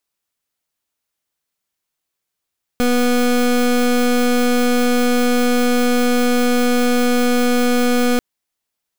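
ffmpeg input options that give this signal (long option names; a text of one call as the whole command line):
ffmpeg -f lavfi -i "aevalsrc='0.178*(2*lt(mod(245*t,1),0.26)-1)':duration=5.39:sample_rate=44100" out.wav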